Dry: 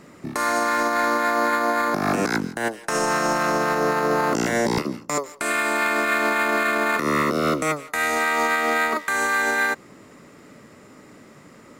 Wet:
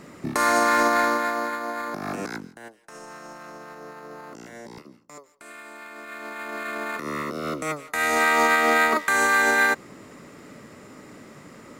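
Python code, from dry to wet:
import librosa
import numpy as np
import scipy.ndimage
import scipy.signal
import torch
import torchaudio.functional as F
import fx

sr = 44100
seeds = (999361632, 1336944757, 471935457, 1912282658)

y = fx.gain(x, sr, db=fx.line((0.91, 2.0), (1.57, -9.0), (2.27, -9.0), (2.74, -20.0), (5.9, -20.0), (6.77, -9.0), (7.42, -9.0), (8.24, 2.0)))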